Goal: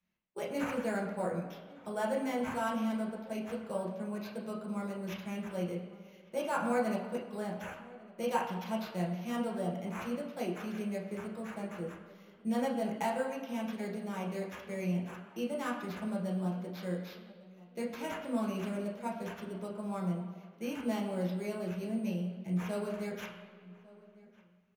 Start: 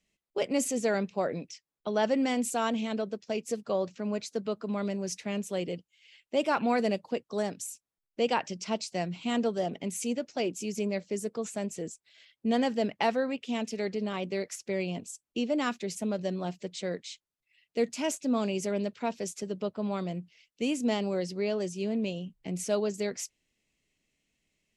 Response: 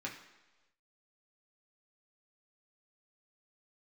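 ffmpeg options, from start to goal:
-filter_complex "[0:a]acrusher=samples=5:mix=1:aa=0.000001,asplit=2[s0][s1];[s1]adelay=1152,lowpass=f=2200:p=1,volume=0.0891,asplit=2[s2][s3];[s3]adelay=1152,lowpass=f=2200:p=1,volume=0.32[s4];[s0][s2][s4]amix=inputs=3:normalize=0[s5];[1:a]atrim=start_sample=2205,asetrate=27783,aresample=44100[s6];[s5][s6]afir=irnorm=-1:irlink=0,volume=0.376"

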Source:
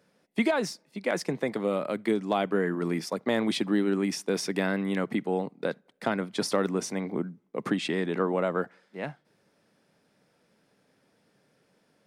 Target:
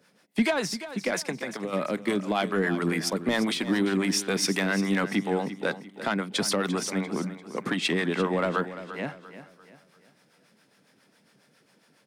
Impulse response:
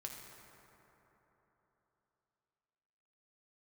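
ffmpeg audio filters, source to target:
-filter_complex "[0:a]highpass=170,equalizer=f=490:t=o:w=2.1:g=-6.5,asplit=2[s0][s1];[s1]alimiter=limit=0.0944:level=0:latency=1:release=271,volume=1.19[s2];[s0][s2]amix=inputs=2:normalize=0,asplit=3[s3][s4][s5];[s3]afade=t=out:st=1.31:d=0.02[s6];[s4]acompressor=threshold=0.0282:ratio=6,afade=t=in:st=1.31:d=0.02,afade=t=out:st=1.72:d=0.02[s7];[s5]afade=t=in:st=1.72:d=0.02[s8];[s6][s7][s8]amix=inputs=3:normalize=0,asoftclip=type=tanh:threshold=0.15,acrossover=split=550[s9][s10];[s9]aeval=exprs='val(0)*(1-0.7/2+0.7/2*cos(2*PI*7.3*n/s))':c=same[s11];[s10]aeval=exprs='val(0)*(1-0.7/2-0.7/2*cos(2*PI*7.3*n/s))':c=same[s12];[s11][s12]amix=inputs=2:normalize=0,aecho=1:1:345|690|1035|1380:0.224|0.0873|0.0341|0.0133,volume=1.68"

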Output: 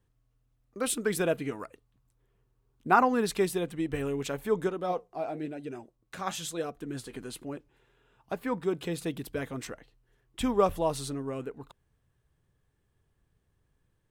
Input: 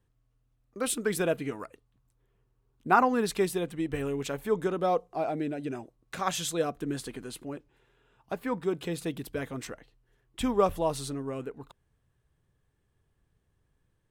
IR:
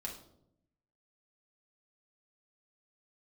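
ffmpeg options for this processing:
-filter_complex "[0:a]asettb=1/sr,asplit=3[s0][s1][s2];[s0]atrim=end=4.694[s3];[s1]atrim=start=4.69:end=7.13,asetpts=PTS-STARTPTS,afade=t=in:d=0.004:c=qsin,afade=t=out:st=2.436:d=0.004:c=qsin,flanger=delay=2.1:depth=8.9:regen=64:speed=1:shape=sinusoidal[s4];[s2]atrim=start=7.126[s5];[s3][s4]acrossfade=d=0.004:c1=hsin:c2=qsin[s6];[s6][s5]acrossfade=d=0.004:c1=qsin:c2=hsin"

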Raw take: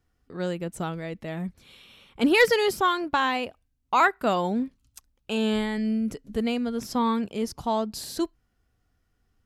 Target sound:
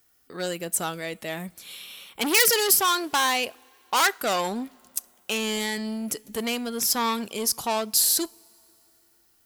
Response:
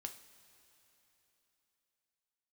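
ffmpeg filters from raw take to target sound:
-filter_complex "[0:a]asoftclip=type=tanh:threshold=0.0668,aemphasis=mode=production:type=riaa,asplit=2[s0][s1];[1:a]atrim=start_sample=2205,asetrate=48510,aresample=44100[s2];[s1][s2]afir=irnorm=-1:irlink=0,volume=0.316[s3];[s0][s3]amix=inputs=2:normalize=0,volume=1.5"

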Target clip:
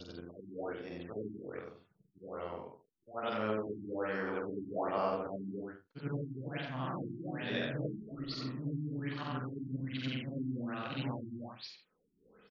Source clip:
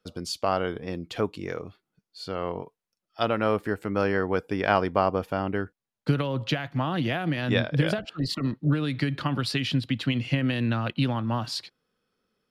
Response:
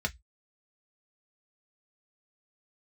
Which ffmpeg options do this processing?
-af "afftfilt=real='re':imag='-im':win_size=8192:overlap=0.75,lowshelf=f=190:g=-8,acompressor=mode=upward:threshold=0.0141:ratio=2.5,aecho=1:1:15|46|79:0.168|0.631|0.282,afftfilt=real='re*lt(b*sr/1024,370*pow(7200/370,0.5+0.5*sin(2*PI*1.2*pts/sr)))':imag='im*lt(b*sr/1024,370*pow(7200/370,0.5+0.5*sin(2*PI*1.2*pts/sr)))':win_size=1024:overlap=0.75,volume=0.501"

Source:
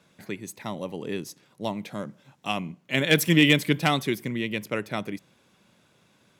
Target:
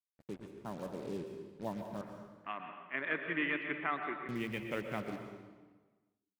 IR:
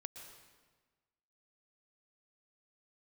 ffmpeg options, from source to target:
-filter_complex "[0:a]deesser=0.5,afwtdn=0.02,acrusher=bits=6:mix=0:aa=0.5,asettb=1/sr,asplit=3[s0][s1][s2];[s0]atrim=end=2.014[s3];[s1]atrim=start=2.01:end=4.29,asetpts=PTS-STARTPTS,afade=t=in:d=0.004:c=qsin,afade=t=out:st=2.276:d=0.004:c=qsin,highpass=460,equalizer=f=510:t=q:w=4:g=-9,equalizer=f=780:t=q:w=4:g=-6,equalizer=f=1200:t=q:w=4:g=5,equalizer=f=1800:t=q:w=4:g=4,lowpass=f=2100:w=0.5412,lowpass=f=2100:w=1.3066[s4];[s2]atrim=start=4.286[s5];[s3][s4]acrossfade=d=0.004:c1=hsin:c2=qsin[s6];[s6][s5]acrossfade=d=0.004:c1=qsin:c2=hsin[s7];[1:a]atrim=start_sample=2205[s8];[s7][s8]afir=irnorm=-1:irlink=0,volume=0.631"

